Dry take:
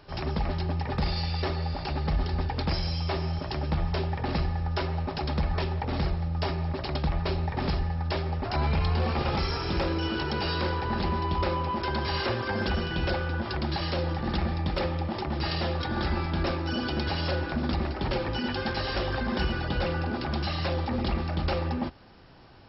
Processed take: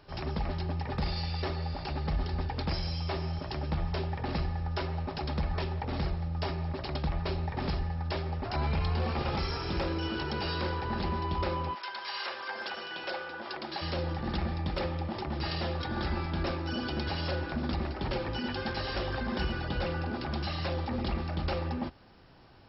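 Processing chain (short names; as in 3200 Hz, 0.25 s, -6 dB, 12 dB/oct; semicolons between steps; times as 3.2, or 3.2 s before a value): 11.73–13.81 HPF 1200 Hz -> 330 Hz 12 dB/oct; gain -4 dB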